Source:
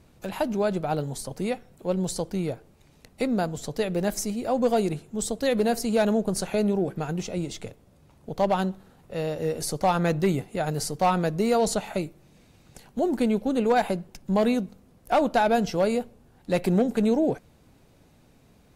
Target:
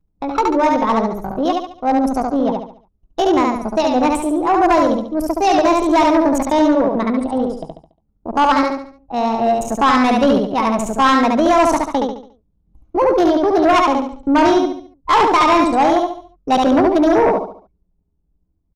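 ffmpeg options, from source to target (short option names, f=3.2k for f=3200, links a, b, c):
-filter_complex "[0:a]agate=range=-33dB:threshold=-49dB:ratio=3:detection=peak,acrossover=split=9200[a][b];[b]acompressor=threshold=-60dB:ratio=4:attack=1:release=60[c];[a][c]amix=inputs=2:normalize=0,anlmdn=25.1,equalizer=f=1.3k:t=o:w=0.42:g=-3,acrossover=split=5400[d][e];[e]acompressor=threshold=-58dB:ratio=16[f];[d][f]amix=inputs=2:normalize=0,asetrate=64194,aresample=44100,atempo=0.686977,asplit=2[g][h];[h]aecho=0:1:71|142|213|284|355:0.708|0.269|0.102|0.0388|0.0148[i];[g][i]amix=inputs=2:normalize=0,aeval=exprs='0.335*sin(PI/2*1.78*val(0)/0.335)':c=same,volume=1.5dB"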